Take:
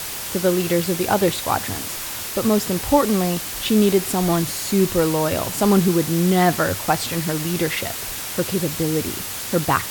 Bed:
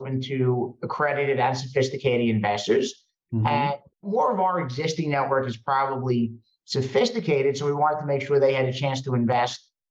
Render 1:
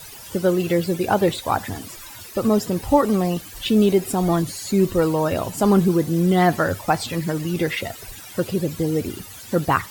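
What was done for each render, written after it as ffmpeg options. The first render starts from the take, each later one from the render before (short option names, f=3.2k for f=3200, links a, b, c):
-af "afftdn=nr=15:nf=-30"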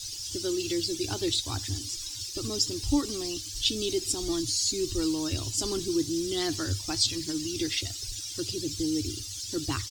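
-af "firequalizer=gain_entry='entry(110,0);entry(180,-29);entry(300,-2);entry(510,-24);entry(1100,-18);entry(2000,-14);entry(3300,1);entry(5300,11);entry(12000,-11)':delay=0.05:min_phase=1"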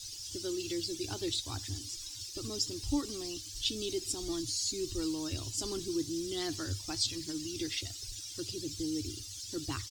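-af "volume=-6.5dB"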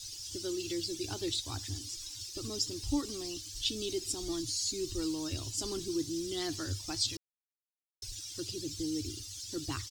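-filter_complex "[0:a]asplit=3[a][b][c];[a]atrim=end=7.17,asetpts=PTS-STARTPTS,afade=t=out:st=7.166:d=0.004:c=hsin[d];[b]atrim=start=7.17:end=8.02,asetpts=PTS-STARTPTS,volume=0[e];[c]atrim=start=8.02,asetpts=PTS-STARTPTS,afade=t=in:d=0.004:c=hsin[f];[d][e][f]concat=n=3:v=0:a=1"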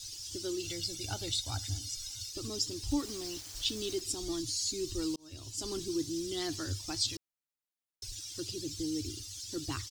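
-filter_complex "[0:a]asettb=1/sr,asplit=3[a][b][c];[a]atrim=end=0.644[d];[b]atrim=start=0.64:end=2.32,asetpts=PTS-STARTPTS,afade=t=in:d=0.004:c=qsin,afade=t=out:st=1.676:d=0.004:c=qsin,aecho=1:1:1.4:0.63,atrim=end_sample=74088[e];[c]atrim=start=2.316[f];[d][e]acrossfade=d=0.004:c1=hsin:c2=qsin[g];[g][f]acrossfade=d=0.004:c1=qsin:c2=hsin,asettb=1/sr,asplit=3[h][i][j];[h]atrim=end=2.914[k];[i]atrim=start=2.91:end=4.01,asetpts=PTS-STARTPTS,afade=t=in:d=0.004:c=qsin,afade=t=out:st=1.096:d=0.004:c=qsin,aeval=exprs='val(0)*gte(abs(val(0)),0.00562)':c=same[l];[j]atrim=start=4.006[m];[k][l]acrossfade=d=0.004:c1=hsin:c2=qsin[n];[n][m]acrossfade=d=0.004:c1=qsin:c2=hsin,asplit=2[o][p];[o]atrim=end=5.16,asetpts=PTS-STARTPTS,afade=t=out:st=5.156:d=0.004:c=hsin[q];[p]atrim=start=5.16,asetpts=PTS-STARTPTS,afade=t=in:d=0.59[r];[q][r]concat=n=2:v=0:a=1"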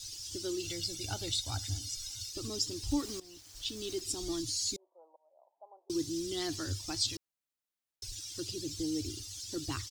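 -filter_complex "[0:a]asettb=1/sr,asplit=3[a][b][c];[a]atrim=end=4.764[d];[b]atrim=start=4.76:end=5.9,asetpts=PTS-STARTPTS,afade=t=in:d=0.004:c=qsin,afade=t=out:st=1.136:d=0.004:c=qsin,asuperpass=centerf=710:order=8:qfactor=1.9[e];[c]atrim=start=5.896[f];[d][e]acrossfade=d=0.004:c1=hsin:c2=qsin[g];[g][f]acrossfade=d=0.004:c1=qsin:c2=hsin,asettb=1/sr,asplit=3[h][i][j];[h]atrim=end=8.694[k];[i]atrim=start=8.69:end=9.55,asetpts=PTS-STARTPTS,afade=t=in:d=0.004:c=qsin,afade=t=out:st=0.856:d=0.004:c=qsin,equalizer=f=640:t=o:w=0.77:g=6[l];[j]atrim=start=9.546[m];[k][l]acrossfade=d=0.004:c1=hsin:c2=qsin[n];[n][m]acrossfade=d=0.004:c1=qsin:c2=hsin,asplit=2[o][p];[o]atrim=end=3.2,asetpts=PTS-STARTPTS,afade=t=out:st=3.196:d=0.004:c=hsin:silence=0.141254[q];[p]atrim=start=3.2,asetpts=PTS-STARTPTS,afade=t=in:d=0.97:silence=0.141254[r];[q][r]concat=n=2:v=0:a=1"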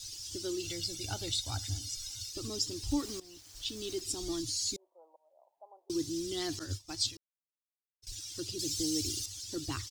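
-filter_complex "[0:a]asettb=1/sr,asplit=3[a][b][c];[a]atrim=end=6.594[d];[b]atrim=start=6.59:end=8.07,asetpts=PTS-STARTPTS,afade=t=in:d=0.004:c=qsin,afade=t=out:st=1.476:d=0.004:c=qsin,agate=range=-33dB:threshold=-34dB:ratio=3:release=100:detection=peak[e];[c]atrim=start=8.066[f];[d][e]acrossfade=d=0.004:c1=hsin:c2=qsin[g];[g][f]acrossfade=d=0.004:c1=qsin:c2=hsin,asettb=1/sr,asplit=3[h][i][j];[h]atrim=end=8.594[k];[i]atrim=start=8.59:end=9.26,asetpts=PTS-STARTPTS,afade=t=in:d=0.004:c=qsin,afade=t=out:st=0.666:d=0.004:c=qsin,highshelf=f=3k:g=10[l];[j]atrim=start=9.256[m];[k][l]acrossfade=d=0.004:c1=hsin:c2=qsin[n];[n][m]acrossfade=d=0.004:c1=qsin:c2=hsin"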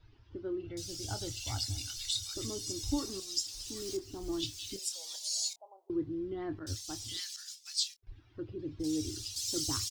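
-filter_complex "[0:a]asplit=2[a][b];[b]adelay=26,volume=-11dB[c];[a][c]amix=inputs=2:normalize=0,acrossover=split=1800[d][e];[e]adelay=770[f];[d][f]amix=inputs=2:normalize=0"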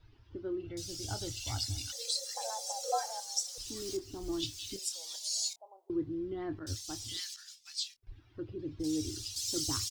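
-filter_complex "[0:a]asettb=1/sr,asplit=3[a][b][c];[a]atrim=end=1.924[d];[b]atrim=start=1.92:end=3.58,asetpts=PTS-STARTPTS,afade=t=in:d=0.004:c=qsin,afade=t=out:st=1.656:d=0.004:c=qsin,afreqshift=450[e];[c]atrim=start=3.576[f];[d][e]acrossfade=d=0.004:c1=hsin:c2=qsin[g];[g][f]acrossfade=d=0.004:c1=qsin:c2=hsin,asettb=1/sr,asplit=3[h][i][j];[h]atrim=end=7.344[k];[i]atrim=start=7.34:end=8.01,asetpts=PTS-STARTPTS,afade=t=in:d=0.004:c=qsin,afade=t=out:st=0.666:d=0.004:c=qsin,bass=f=250:g=13,treble=f=4k:g=-7[l];[j]atrim=start=8.006[m];[k][l]acrossfade=d=0.004:c1=hsin:c2=qsin[n];[n][m]acrossfade=d=0.004:c1=qsin:c2=hsin"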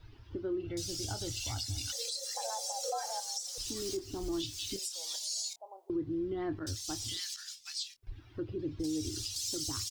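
-filter_complex "[0:a]asplit=2[a][b];[b]acompressor=threshold=-45dB:ratio=6,volume=1dB[c];[a][c]amix=inputs=2:normalize=0,alimiter=level_in=3dB:limit=-24dB:level=0:latency=1:release=92,volume=-3dB"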